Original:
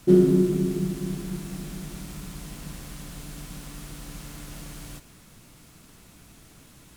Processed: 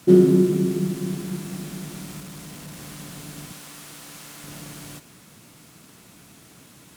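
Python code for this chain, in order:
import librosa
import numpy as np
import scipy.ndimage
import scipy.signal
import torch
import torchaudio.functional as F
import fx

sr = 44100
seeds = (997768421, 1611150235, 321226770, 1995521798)

y = scipy.signal.sosfilt(scipy.signal.butter(2, 120.0, 'highpass', fs=sr, output='sos'), x)
y = fx.clip_hard(y, sr, threshold_db=-39.0, at=(2.2, 2.79))
y = fx.low_shelf(y, sr, hz=340.0, db=-11.5, at=(3.52, 4.44))
y = y * librosa.db_to_amplitude(3.5)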